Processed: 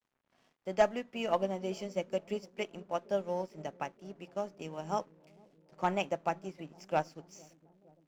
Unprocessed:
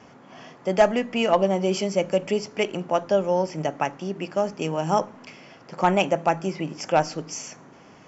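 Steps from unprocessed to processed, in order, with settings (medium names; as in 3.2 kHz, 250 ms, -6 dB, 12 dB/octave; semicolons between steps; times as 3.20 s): crossover distortion -45 dBFS; on a send: feedback echo behind a low-pass 462 ms, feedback 67%, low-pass 450 Hz, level -13.5 dB; on the sum: upward expansion 1.5:1, over -36 dBFS; trim -8 dB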